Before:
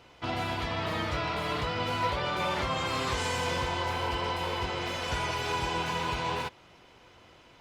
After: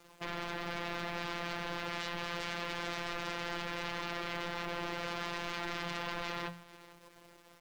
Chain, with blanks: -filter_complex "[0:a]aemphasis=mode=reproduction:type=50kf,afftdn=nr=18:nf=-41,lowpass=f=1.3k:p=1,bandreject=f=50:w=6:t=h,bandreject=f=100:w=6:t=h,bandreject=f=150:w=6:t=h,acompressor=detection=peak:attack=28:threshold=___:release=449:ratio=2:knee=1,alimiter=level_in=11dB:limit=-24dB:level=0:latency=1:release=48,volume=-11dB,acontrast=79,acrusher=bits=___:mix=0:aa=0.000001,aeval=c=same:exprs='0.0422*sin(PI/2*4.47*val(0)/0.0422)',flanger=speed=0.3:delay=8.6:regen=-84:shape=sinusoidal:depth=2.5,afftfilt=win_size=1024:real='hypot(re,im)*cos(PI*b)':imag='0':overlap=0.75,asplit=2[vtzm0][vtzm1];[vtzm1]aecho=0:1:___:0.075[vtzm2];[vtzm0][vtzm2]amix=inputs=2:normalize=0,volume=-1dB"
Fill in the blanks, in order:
-51dB, 10, 447